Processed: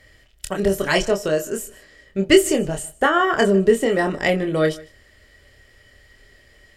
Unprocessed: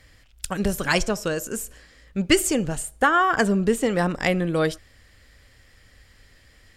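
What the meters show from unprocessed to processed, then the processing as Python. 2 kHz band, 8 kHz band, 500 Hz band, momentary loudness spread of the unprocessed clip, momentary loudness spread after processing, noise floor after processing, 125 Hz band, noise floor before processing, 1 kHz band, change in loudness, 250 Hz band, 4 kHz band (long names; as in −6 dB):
+1.5 dB, −0.5 dB, +6.5 dB, 13 LU, 14 LU, −54 dBFS, 0.0 dB, −55 dBFS, +0.5 dB, +3.5 dB, +2.5 dB, +3.0 dB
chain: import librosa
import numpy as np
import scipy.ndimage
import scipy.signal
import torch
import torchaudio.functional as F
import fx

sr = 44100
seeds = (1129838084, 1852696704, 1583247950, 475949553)

p1 = fx.doubler(x, sr, ms=26.0, db=-5)
p2 = fx.small_body(p1, sr, hz=(400.0, 600.0, 1900.0, 3000.0), ring_ms=45, db=11)
p3 = p2 + fx.echo_single(p2, sr, ms=152, db=-22.5, dry=0)
y = F.gain(torch.from_numpy(p3), -1.5).numpy()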